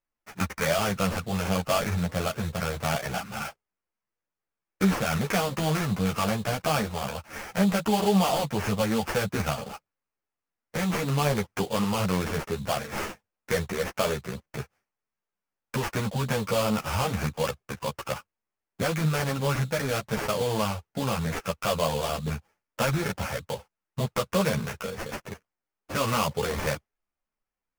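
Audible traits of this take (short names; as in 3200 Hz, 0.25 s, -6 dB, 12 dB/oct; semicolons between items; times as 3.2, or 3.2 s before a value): aliases and images of a low sample rate 3900 Hz, jitter 20%; a shimmering, thickened sound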